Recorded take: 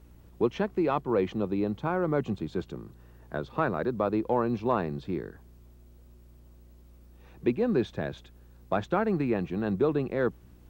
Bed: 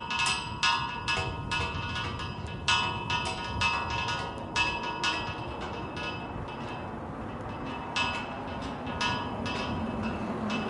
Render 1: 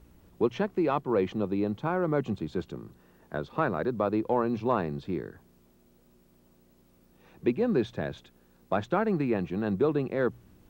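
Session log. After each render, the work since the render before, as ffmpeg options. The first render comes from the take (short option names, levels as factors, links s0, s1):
-af "bandreject=f=60:t=h:w=4,bandreject=f=120:t=h:w=4"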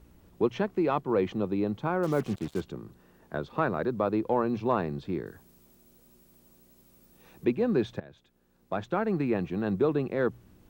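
-filter_complex "[0:a]asettb=1/sr,asplit=3[s0][s1][s2];[s0]atrim=end=2.034[s3];[s1]atrim=start=2.03:end=2.61,asetpts=PTS-STARTPTS,afade=t=in:d=0.004:c=qsin,afade=t=out:st=0.576:d=0.004:c=qsin,acrusher=bits=6:mix=0:aa=0.5[s4];[s2]atrim=start=2.606[s5];[s3][s4]acrossfade=d=0.004:c1=hsin:c2=qsin[s6];[s6][s5]acrossfade=d=0.004:c1=qsin:c2=hsin,asettb=1/sr,asplit=3[s7][s8][s9];[s7]atrim=end=5.264[s10];[s8]atrim=start=5.26:end=7.45,asetpts=PTS-STARTPTS,afade=t=in:d=0.004:c=qsin,afade=t=out:st=2.186:d=0.004:c=qsin,highshelf=f=5000:g=10.5[s11];[s9]atrim=start=7.446[s12];[s10][s11]acrossfade=d=0.004:c1=hsin:c2=qsin[s13];[s13][s12]acrossfade=d=0.004:c1=qsin:c2=hsin,asplit=2[s14][s15];[s14]atrim=end=8,asetpts=PTS-STARTPTS,afade=t=out:st=7.996:d=0.004:c=hsin:silence=0.112202[s16];[s15]atrim=start=8,asetpts=PTS-STARTPTS,afade=t=in:d=1.27:silence=0.112202[s17];[s16][s17]concat=n=2:v=0:a=1"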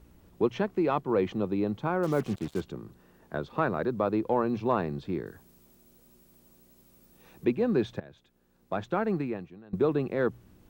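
-filter_complex "[0:a]asplit=2[s0][s1];[s0]atrim=end=9.73,asetpts=PTS-STARTPTS,afade=t=out:st=9.12:d=0.61:c=qua:silence=0.0668344[s2];[s1]atrim=start=9.73,asetpts=PTS-STARTPTS,afade=t=in:d=0.004:c=hsin:silence=0.0668344[s3];[s2][s3]concat=n=2:v=0:a=1"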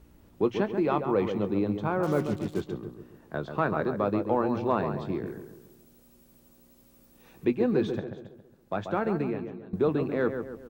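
-filter_complex "[0:a]asplit=2[s0][s1];[s1]adelay=20,volume=0.224[s2];[s0][s2]amix=inputs=2:normalize=0,asplit=2[s3][s4];[s4]adelay=137,lowpass=f=1800:p=1,volume=0.447,asplit=2[s5][s6];[s6]adelay=137,lowpass=f=1800:p=1,volume=0.47,asplit=2[s7][s8];[s8]adelay=137,lowpass=f=1800:p=1,volume=0.47,asplit=2[s9][s10];[s10]adelay=137,lowpass=f=1800:p=1,volume=0.47,asplit=2[s11][s12];[s12]adelay=137,lowpass=f=1800:p=1,volume=0.47,asplit=2[s13][s14];[s14]adelay=137,lowpass=f=1800:p=1,volume=0.47[s15];[s3][s5][s7][s9][s11][s13][s15]amix=inputs=7:normalize=0"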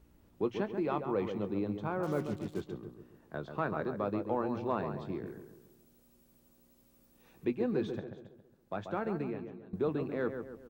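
-af "volume=0.447"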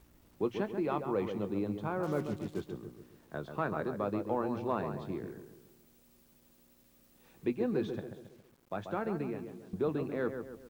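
-af "acrusher=bits=10:mix=0:aa=0.000001"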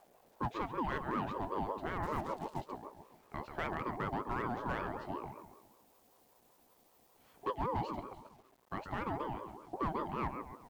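-af "asoftclip=type=hard:threshold=0.0473,aeval=exprs='val(0)*sin(2*PI*620*n/s+620*0.25/5.2*sin(2*PI*5.2*n/s))':c=same"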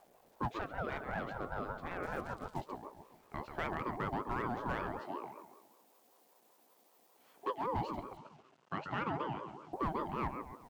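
-filter_complex "[0:a]asettb=1/sr,asplit=3[s0][s1][s2];[s0]atrim=end=0.594[s3];[s1]atrim=start=0.59:end=2.54,asetpts=PTS-STARTPTS,afade=t=in:d=0.004:c=qsin,afade=t=out:st=1.946:d=0.004:c=qsin,aeval=exprs='val(0)*sin(2*PI*420*n/s)':c=same[s4];[s2]atrim=start=2.536[s5];[s3][s4]acrossfade=d=0.004:c1=hsin:c2=qsin[s6];[s6][s5]acrossfade=d=0.004:c1=qsin:c2=hsin,asettb=1/sr,asplit=3[s7][s8][s9];[s7]atrim=end=4.994[s10];[s8]atrim=start=4.99:end=7.67,asetpts=PTS-STARTPTS,afade=t=in:d=0.004:c=qsin,afade=t=out:st=2.676:d=0.004:c=qsin,highpass=260[s11];[s9]atrim=start=7.666[s12];[s10][s11]acrossfade=d=0.004:c1=hsin:c2=qsin[s13];[s13][s12]acrossfade=d=0.004:c1=qsin:c2=hsin,asettb=1/sr,asplit=3[s14][s15][s16];[s14]atrim=end=8.174[s17];[s15]atrim=start=8.17:end=9.73,asetpts=PTS-STARTPTS,afade=t=in:d=0.004:c=qsin,afade=t=out:st=1.556:d=0.004:c=qsin,highpass=120,equalizer=f=150:t=q:w=4:g=9,equalizer=f=1400:t=q:w=4:g=6,equalizer=f=2800:t=q:w=4:g=7,lowpass=f=7100:w=0.5412,lowpass=f=7100:w=1.3066[s18];[s16]atrim=start=9.726[s19];[s17][s18]acrossfade=d=0.004:c1=hsin:c2=qsin[s20];[s20][s19]acrossfade=d=0.004:c1=qsin:c2=hsin"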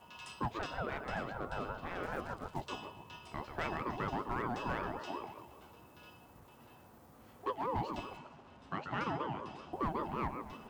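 -filter_complex "[1:a]volume=0.0794[s0];[0:a][s0]amix=inputs=2:normalize=0"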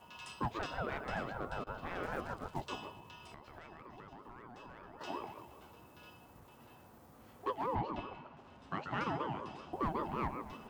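-filter_complex "[0:a]asettb=1/sr,asplit=3[s0][s1][s2];[s0]atrim=end=2.934[s3];[s1]atrim=start=2.93:end=5.01,asetpts=PTS-STARTPTS,afade=t=in:d=0.004:c=qsin,afade=t=out:st=2.076:d=0.004:c=qsin,acompressor=threshold=0.00398:ratio=10:attack=3.2:release=140:knee=1:detection=peak[s4];[s2]atrim=start=5.006[s5];[s3][s4]acrossfade=d=0.004:c1=hsin:c2=qsin[s6];[s6][s5]acrossfade=d=0.004:c1=qsin:c2=hsin,asettb=1/sr,asplit=3[s7][s8][s9];[s7]atrim=end=7.754[s10];[s8]atrim=start=7.75:end=8.37,asetpts=PTS-STARTPTS,afade=t=in:d=0.004:c=qsin,afade=t=out:st=0.616:d=0.004:c=qsin,lowpass=3000[s11];[s9]atrim=start=8.366[s12];[s10][s11]acrossfade=d=0.004:c1=hsin:c2=qsin[s13];[s13][s12]acrossfade=d=0.004:c1=qsin:c2=hsin,asplit=3[s14][s15][s16];[s14]atrim=end=1.64,asetpts=PTS-STARTPTS,afade=t=out:st=1.35:d=0.29:c=log:silence=0.0944061[s17];[s15]atrim=start=1.64:end=1.67,asetpts=PTS-STARTPTS,volume=0.0944[s18];[s16]atrim=start=1.67,asetpts=PTS-STARTPTS,afade=t=in:d=0.29:c=log:silence=0.0944061[s19];[s17][s18][s19]concat=n=3:v=0:a=1"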